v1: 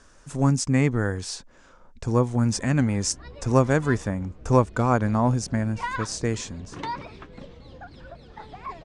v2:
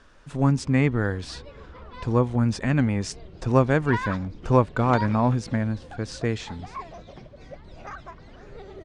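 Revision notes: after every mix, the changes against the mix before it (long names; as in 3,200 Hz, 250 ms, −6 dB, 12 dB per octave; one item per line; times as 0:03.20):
speech: add high shelf with overshoot 4,900 Hz −9 dB, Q 1.5
background: entry −1.90 s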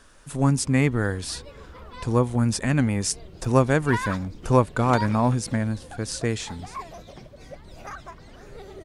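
master: remove high-frequency loss of the air 120 metres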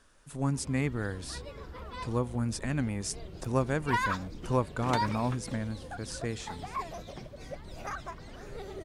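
speech −9.5 dB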